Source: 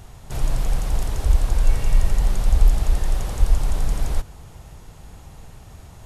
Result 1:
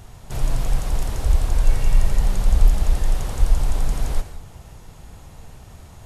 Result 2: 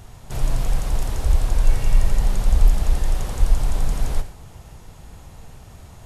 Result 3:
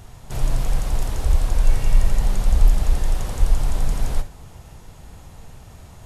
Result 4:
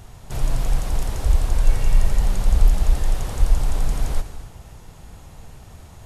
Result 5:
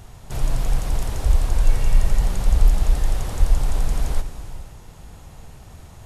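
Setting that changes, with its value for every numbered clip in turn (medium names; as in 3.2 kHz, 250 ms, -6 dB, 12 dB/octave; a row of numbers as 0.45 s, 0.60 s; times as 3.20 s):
gated-style reverb, gate: 210 ms, 140 ms, 90 ms, 310 ms, 510 ms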